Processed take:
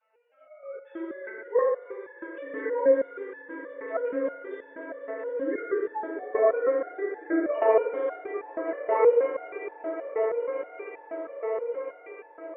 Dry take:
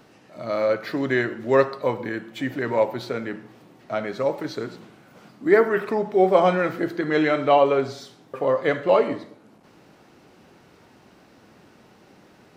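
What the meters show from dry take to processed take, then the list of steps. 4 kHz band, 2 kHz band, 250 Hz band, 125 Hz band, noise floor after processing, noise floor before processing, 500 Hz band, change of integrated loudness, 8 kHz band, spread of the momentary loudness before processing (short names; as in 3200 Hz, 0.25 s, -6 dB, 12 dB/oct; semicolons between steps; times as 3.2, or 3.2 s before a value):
under -25 dB, -9.5 dB, -8.5 dB, under -30 dB, -53 dBFS, -54 dBFS, -3.5 dB, -5.5 dB, n/a, 14 LU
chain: sine-wave speech; on a send: swelling echo 0.188 s, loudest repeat 8, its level -15.5 dB; on the sum: FDN reverb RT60 1.5 s, low-frequency decay 1.3×, high-frequency decay 0.65×, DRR -9 dB; stepped resonator 6.3 Hz 220–860 Hz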